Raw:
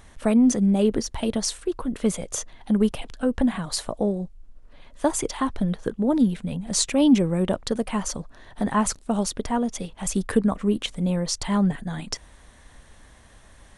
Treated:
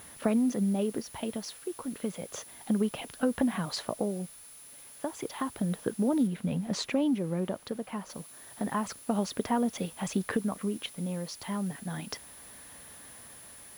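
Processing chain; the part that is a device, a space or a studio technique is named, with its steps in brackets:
medium wave at night (band-pass filter 130–4,100 Hz; downward compressor, threshold −23 dBFS, peak gain reduction 11 dB; amplitude tremolo 0.31 Hz, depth 60%; steady tone 10,000 Hz −49 dBFS; white noise bed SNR 23 dB)
0:06.27–0:08.10: high-shelf EQ 3,800 Hz −7.5 dB

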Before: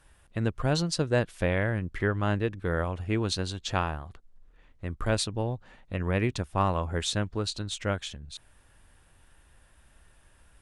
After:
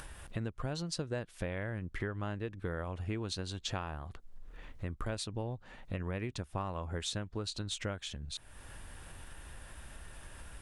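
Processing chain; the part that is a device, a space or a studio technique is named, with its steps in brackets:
upward and downward compression (upward compression, threshold −37 dBFS; downward compressor 6 to 1, threshold −34 dBFS, peak gain reduction 14 dB)

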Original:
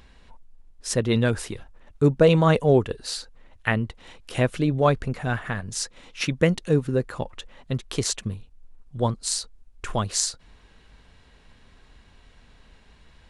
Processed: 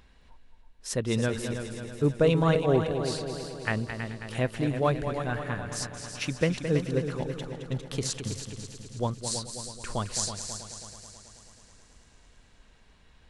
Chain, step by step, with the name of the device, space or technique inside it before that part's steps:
multi-head tape echo (echo machine with several playback heads 108 ms, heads second and third, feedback 59%, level −9 dB; tape wow and flutter 21 cents)
level −6 dB

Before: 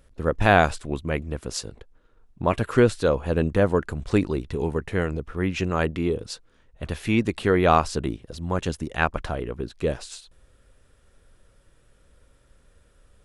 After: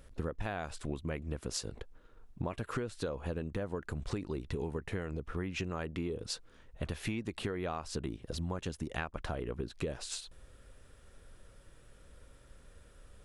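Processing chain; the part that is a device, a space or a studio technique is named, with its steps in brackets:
serial compression, leveller first (downward compressor 2.5 to 1, threshold −22 dBFS, peak gain reduction 8 dB; downward compressor 10 to 1, threshold −34 dBFS, peak gain reduction 16 dB)
level +1 dB

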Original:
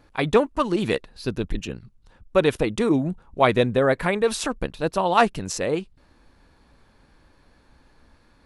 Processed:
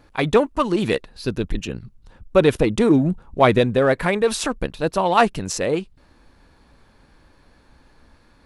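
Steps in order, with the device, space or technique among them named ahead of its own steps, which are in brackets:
0:01.74–0:03.59: low-shelf EQ 500 Hz +4 dB
parallel distortion (in parallel at −11.5 dB: hard clipping −20 dBFS, distortion −6 dB)
on the sum: level +1 dB

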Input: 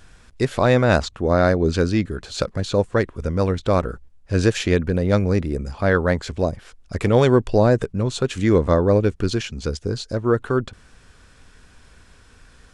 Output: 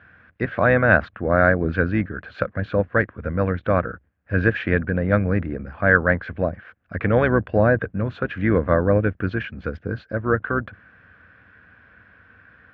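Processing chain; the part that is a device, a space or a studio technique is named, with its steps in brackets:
sub-octave bass pedal (sub-octave generator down 2 octaves, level −5 dB; loudspeaker in its box 87–2,300 Hz, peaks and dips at 140 Hz −8 dB, 250 Hz −3 dB, 390 Hz −9 dB, 900 Hz −7 dB, 1,600 Hz +9 dB)
level +1 dB

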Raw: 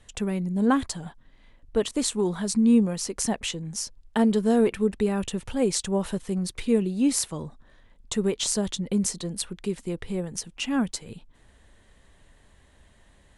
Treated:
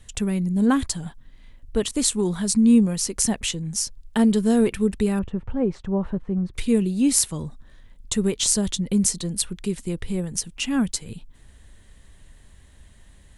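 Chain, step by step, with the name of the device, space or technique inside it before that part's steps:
smiley-face EQ (low-shelf EQ 160 Hz +6 dB; parametric band 680 Hz −5 dB 2.2 octaves; high-shelf EQ 8,100 Hz +8 dB)
0:05.19–0:06.54: Chebyshev low-pass filter 1,100 Hz, order 2
level +3 dB

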